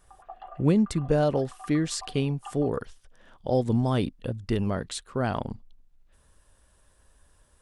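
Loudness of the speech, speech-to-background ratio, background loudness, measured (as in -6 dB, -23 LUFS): -27.5 LUFS, 19.5 dB, -47.0 LUFS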